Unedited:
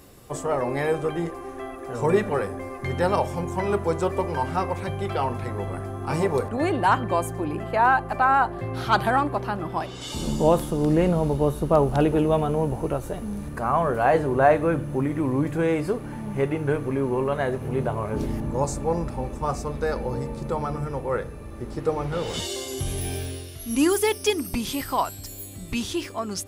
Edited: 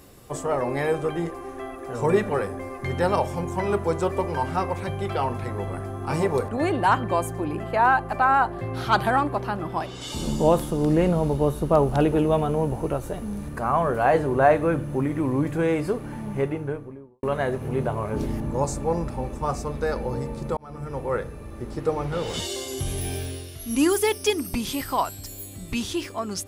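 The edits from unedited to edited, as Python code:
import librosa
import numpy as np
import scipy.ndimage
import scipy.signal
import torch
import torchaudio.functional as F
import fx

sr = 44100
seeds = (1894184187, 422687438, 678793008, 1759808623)

y = fx.studio_fade_out(x, sr, start_s=16.22, length_s=1.01)
y = fx.edit(y, sr, fx.fade_in_span(start_s=20.57, length_s=0.45), tone=tone)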